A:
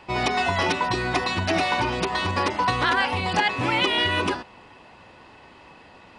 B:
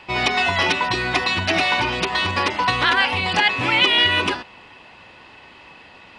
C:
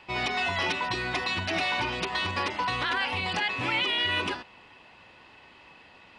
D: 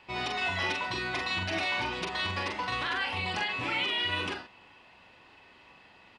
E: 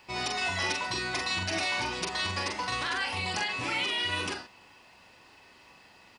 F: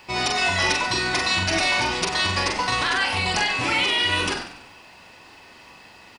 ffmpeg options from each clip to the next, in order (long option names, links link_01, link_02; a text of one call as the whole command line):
ffmpeg -i in.wav -af "equalizer=frequency=2800:width_type=o:width=1.8:gain=8" out.wav
ffmpeg -i in.wav -af "alimiter=limit=-10dB:level=0:latency=1:release=27,volume=-8dB" out.wav
ffmpeg -i in.wav -filter_complex "[0:a]asplit=2[link_01][link_02];[link_02]adelay=43,volume=-4.5dB[link_03];[link_01][link_03]amix=inputs=2:normalize=0,volume=-4.5dB" out.wav
ffmpeg -i in.wav -af "aexciter=amount=4.3:drive=3.2:freq=4700" out.wav
ffmpeg -i in.wav -filter_complex "[0:a]asplit=6[link_01][link_02][link_03][link_04][link_05][link_06];[link_02]adelay=95,afreqshift=-44,volume=-12dB[link_07];[link_03]adelay=190,afreqshift=-88,volume=-18.9dB[link_08];[link_04]adelay=285,afreqshift=-132,volume=-25.9dB[link_09];[link_05]adelay=380,afreqshift=-176,volume=-32.8dB[link_10];[link_06]adelay=475,afreqshift=-220,volume=-39.7dB[link_11];[link_01][link_07][link_08][link_09][link_10][link_11]amix=inputs=6:normalize=0,volume=8.5dB" out.wav